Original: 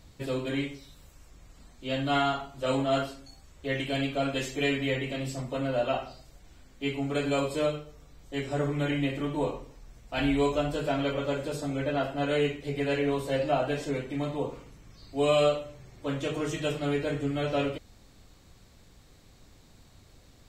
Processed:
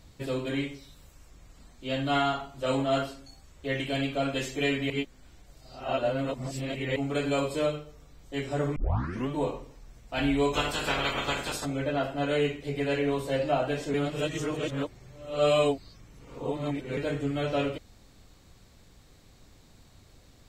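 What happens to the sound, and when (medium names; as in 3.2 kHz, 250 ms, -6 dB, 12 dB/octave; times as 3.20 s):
4.90–6.96 s: reverse
8.76 s: tape start 0.53 s
10.53–11.64 s: spectral peaks clipped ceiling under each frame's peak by 22 dB
13.94–16.97 s: reverse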